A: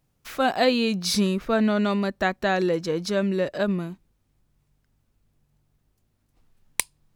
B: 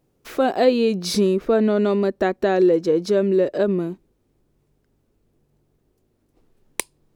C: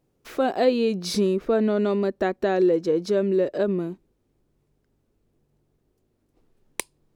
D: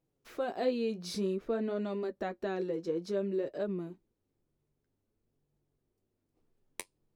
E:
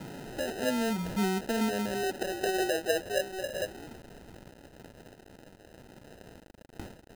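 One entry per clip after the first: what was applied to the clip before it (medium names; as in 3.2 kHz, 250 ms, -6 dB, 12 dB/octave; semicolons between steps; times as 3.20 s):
peaking EQ 390 Hz +14.5 dB 1.4 oct; in parallel at +2 dB: compression, threshold -20 dBFS, peak gain reduction 14 dB; on the sum: trim -7.5 dB
treble shelf 11 kHz -3 dB; trim -3.5 dB
flange 0.54 Hz, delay 5.9 ms, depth 7.5 ms, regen -44%; trim -7.5 dB
jump at every zero crossing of -35 dBFS; high-pass sweep 180 Hz -> 1.8 kHz, 1.30–5.12 s; sample-and-hold 39×; trim -3 dB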